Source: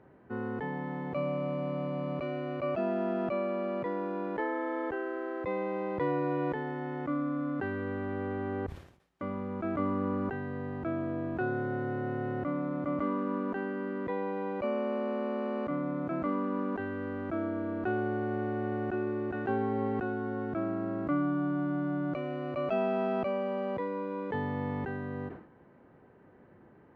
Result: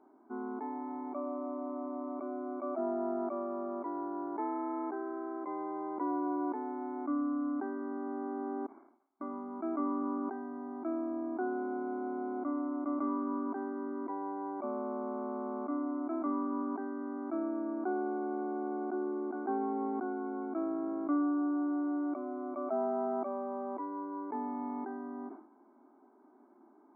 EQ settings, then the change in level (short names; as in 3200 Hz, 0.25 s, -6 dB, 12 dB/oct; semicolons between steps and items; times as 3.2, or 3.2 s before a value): brick-wall FIR band-pass 220–2300 Hz; fixed phaser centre 500 Hz, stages 6; 0.0 dB